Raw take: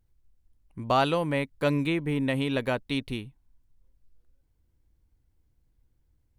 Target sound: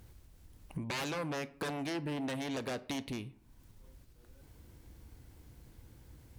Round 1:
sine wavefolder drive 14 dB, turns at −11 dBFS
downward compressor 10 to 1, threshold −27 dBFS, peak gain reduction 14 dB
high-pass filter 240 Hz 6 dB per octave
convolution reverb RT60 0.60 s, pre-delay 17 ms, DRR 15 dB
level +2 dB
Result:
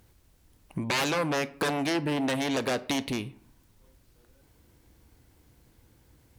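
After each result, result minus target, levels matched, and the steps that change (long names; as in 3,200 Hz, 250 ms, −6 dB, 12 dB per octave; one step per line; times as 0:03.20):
downward compressor: peak gain reduction −10.5 dB; 125 Hz band −3.5 dB
change: downward compressor 10 to 1, threshold −38.5 dBFS, peak gain reduction 24.5 dB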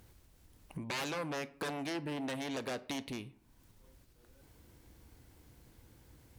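125 Hz band −3.0 dB
change: high-pass filter 110 Hz 6 dB per octave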